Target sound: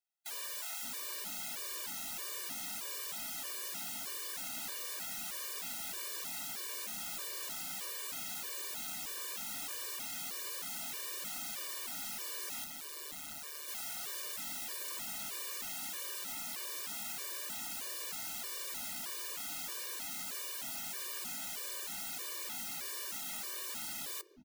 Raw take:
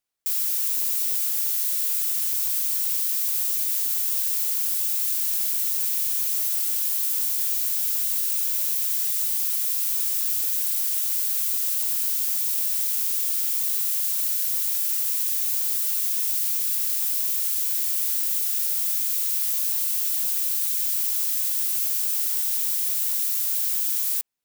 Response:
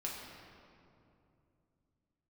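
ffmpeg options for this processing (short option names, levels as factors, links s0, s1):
-filter_complex "[0:a]asettb=1/sr,asplit=3[s0][s1][s2];[s0]atrim=end=6.874[s3];[s1]atrim=start=6.87:end=7.27,asetpts=PTS-STARTPTS,afade=t=in:d=0.004:c=qsin,afade=t=out:st=0.396:d=0.004:c=qsin,aecho=1:1:1.3:0.68,atrim=end_sample=17640[s4];[s2]atrim=start=7.266[s5];[s3][s4]acrossfade=d=0.004:c1=hsin:c2=qsin[s6];[s6][s5]acrossfade=d=0.004:c1=qsin:c2=hsin,aeval=exprs='(mod(22.4*val(0)+1,2)-1)/22.4':c=same,lowshelf=f=150:t=q:w=1.5:g=-8,asettb=1/sr,asplit=3[s7][s8][s9];[s7]atrim=end=12.644[s10];[s8]atrim=start=12.64:end=13.68,asetpts=PTS-STARTPTS,afade=t=in:d=0.004:c=qsin,afade=t=out:st=1.036:d=0.004:c=qsin,tremolo=f=150:d=0.947[s11];[s9]atrim=start=13.676[s12];[s10][s11]acrossfade=d=0.004:c1=hsin:c2=qsin[s13];[s13][s12]acrossfade=d=0.004:c1=qsin:c2=hsin,acrossover=split=400[s14][s15];[s14]adelay=570[s16];[s16][s15]amix=inputs=2:normalize=0,asplit=2[s17][s18];[1:a]atrim=start_sample=2205,asetrate=52920,aresample=44100[s19];[s18][s19]afir=irnorm=-1:irlink=0,volume=0.119[s20];[s17][s20]amix=inputs=2:normalize=0,afftfilt=real='re*gt(sin(2*PI*1.6*pts/sr)*(1-2*mod(floor(b*sr/1024/310),2)),0)':imag='im*gt(sin(2*PI*1.6*pts/sr)*(1-2*mod(floor(b*sr/1024/310),2)),0)':win_size=1024:overlap=0.75,volume=0.447"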